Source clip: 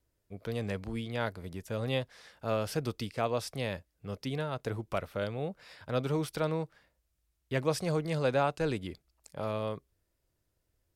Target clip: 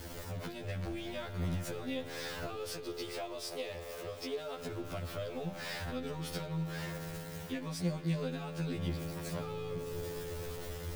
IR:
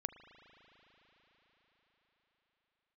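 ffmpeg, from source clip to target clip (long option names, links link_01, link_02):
-filter_complex "[0:a]aeval=exprs='val(0)+0.5*0.00891*sgn(val(0))':channel_layout=same,acompressor=threshold=-38dB:ratio=2.5,asettb=1/sr,asplit=3[link_01][link_02][link_03];[link_01]atrim=end=2.544[link_04];[link_02]atrim=start=2.54:end=4.6,asetpts=PTS-STARTPTS,afade=type=in:duration=0.004:curve=qsin,afade=type=out:start_time=2.056:duration=0.004:curve=qsin,lowshelf=frequency=290:width_type=q:width=3:gain=-10[link_05];[link_03]atrim=start=4.596[link_06];[link_04][link_05]acrossfade=duration=0.004:curve1=hsin:curve2=qsin[link_07];[link_07][link_06]acrossfade=duration=0.004:curve1=qsin:curve2=hsin[link_08];[1:a]atrim=start_sample=2205[link_09];[link_08][link_09]afir=irnorm=-1:irlink=0,acrossover=split=250|3000[link_10][link_11][link_12];[link_11]acompressor=threshold=-47dB:ratio=6[link_13];[link_10][link_13][link_12]amix=inputs=3:normalize=0,equalizer=frequency=11000:width=0.49:gain=-5.5,afftfilt=real='re*2*eq(mod(b,4),0)':imag='im*2*eq(mod(b,4),0)':win_size=2048:overlap=0.75,volume=9.5dB"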